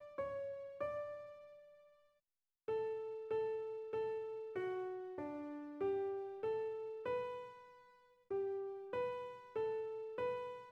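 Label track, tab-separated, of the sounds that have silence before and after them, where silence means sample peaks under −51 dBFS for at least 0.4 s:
2.680000	7.580000	sound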